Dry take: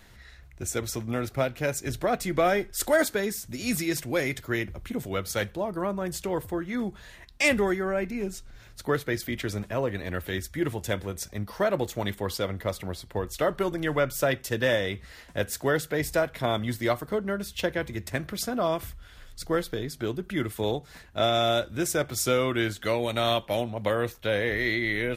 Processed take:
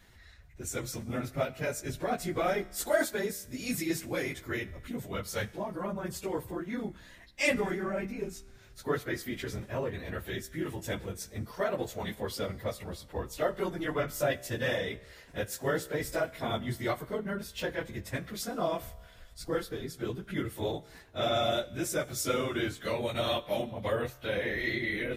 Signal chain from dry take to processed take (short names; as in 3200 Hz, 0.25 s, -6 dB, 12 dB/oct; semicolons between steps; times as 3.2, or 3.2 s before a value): phase scrambler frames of 50 ms; resonator 65 Hz, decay 1.5 s, harmonics all, mix 40%; gain -1.5 dB